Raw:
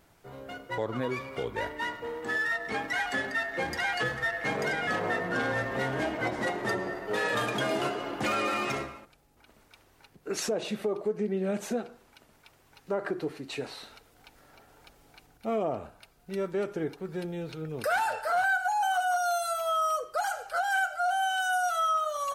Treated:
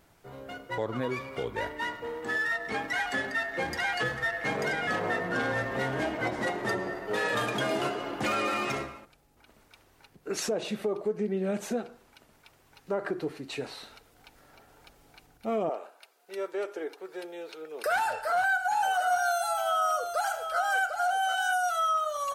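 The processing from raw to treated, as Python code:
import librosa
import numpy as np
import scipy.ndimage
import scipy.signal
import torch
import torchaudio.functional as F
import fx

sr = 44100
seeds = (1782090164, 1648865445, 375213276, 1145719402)

y = fx.highpass(x, sr, hz=390.0, slope=24, at=(15.69, 17.86))
y = fx.echo_single(y, sr, ms=750, db=-7.5, at=(18.7, 21.52), fade=0.02)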